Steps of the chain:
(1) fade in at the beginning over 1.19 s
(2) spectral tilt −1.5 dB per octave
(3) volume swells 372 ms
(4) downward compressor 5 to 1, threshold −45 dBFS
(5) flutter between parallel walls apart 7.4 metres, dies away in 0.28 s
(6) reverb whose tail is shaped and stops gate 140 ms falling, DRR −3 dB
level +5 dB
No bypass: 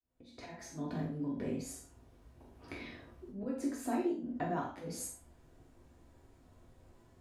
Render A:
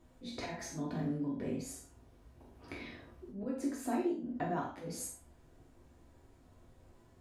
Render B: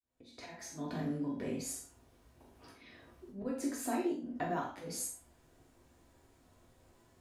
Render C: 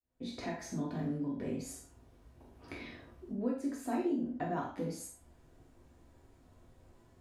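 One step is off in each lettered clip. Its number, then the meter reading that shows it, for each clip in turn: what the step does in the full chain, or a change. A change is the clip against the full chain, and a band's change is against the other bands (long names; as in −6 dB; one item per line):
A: 1, 4 kHz band +3.0 dB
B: 2, 8 kHz band +4.0 dB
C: 3, 8 kHz band −3.5 dB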